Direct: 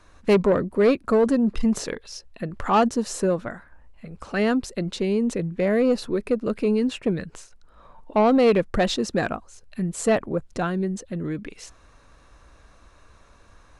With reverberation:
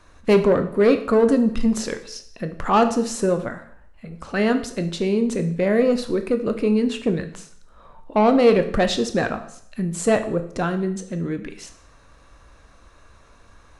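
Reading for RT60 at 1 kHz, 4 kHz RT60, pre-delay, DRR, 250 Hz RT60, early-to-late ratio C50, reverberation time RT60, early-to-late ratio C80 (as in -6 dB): 0.65 s, 0.60 s, 7 ms, 7.5 dB, 0.60 s, 12.0 dB, 0.65 s, 15.0 dB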